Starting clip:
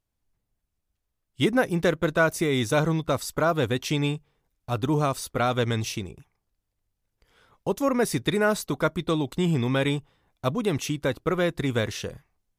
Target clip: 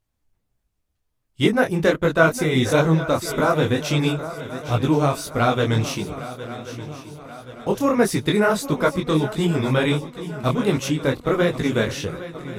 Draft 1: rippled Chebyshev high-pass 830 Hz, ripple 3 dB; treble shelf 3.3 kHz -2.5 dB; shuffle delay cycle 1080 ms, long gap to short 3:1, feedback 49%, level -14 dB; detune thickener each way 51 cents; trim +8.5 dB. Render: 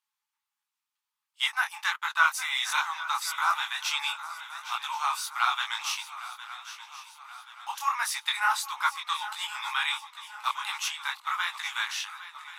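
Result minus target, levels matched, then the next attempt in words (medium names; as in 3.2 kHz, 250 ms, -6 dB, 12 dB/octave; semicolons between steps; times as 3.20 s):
1 kHz band +5.5 dB
treble shelf 3.3 kHz -2.5 dB; shuffle delay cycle 1080 ms, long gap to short 3:1, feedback 49%, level -14 dB; detune thickener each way 51 cents; trim +8.5 dB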